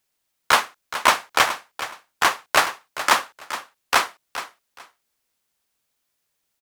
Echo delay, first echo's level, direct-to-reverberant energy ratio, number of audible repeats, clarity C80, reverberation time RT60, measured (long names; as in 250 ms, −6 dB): 421 ms, −12.5 dB, no reverb audible, 2, no reverb audible, no reverb audible